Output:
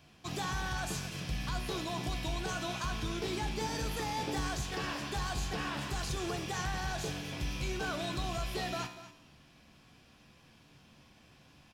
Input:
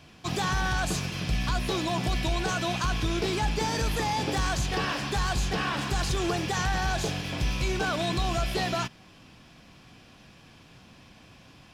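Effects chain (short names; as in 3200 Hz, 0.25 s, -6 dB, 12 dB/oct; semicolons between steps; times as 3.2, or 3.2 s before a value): high shelf 12000 Hz +7 dB; resonator 73 Hz, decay 0.89 s, harmonics all, mix 70%; on a send: echo 0.239 s -14.5 dB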